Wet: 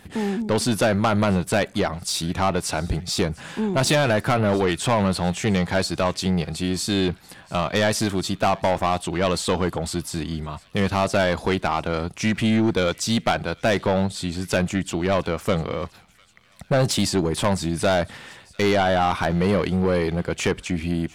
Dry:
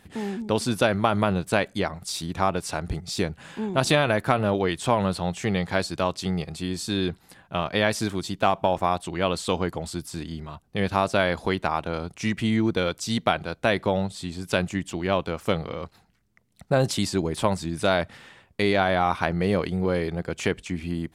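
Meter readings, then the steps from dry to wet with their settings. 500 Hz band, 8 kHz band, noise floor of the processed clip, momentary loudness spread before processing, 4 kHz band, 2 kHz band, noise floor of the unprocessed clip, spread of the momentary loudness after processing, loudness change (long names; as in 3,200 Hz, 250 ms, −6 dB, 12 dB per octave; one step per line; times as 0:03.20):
+2.5 dB, +6.0 dB, −51 dBFS, 9 LU, +3.5 dB, +1.5 dB, −60 dBFS, 7 LU, +3.0 dB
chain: soft clipping −20.5 dBFS, distortion −9 dB
delay with a high-pass on its return 701 ms, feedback 56%, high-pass 1,700 Hz, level −22.5 dB
level +6.5 dB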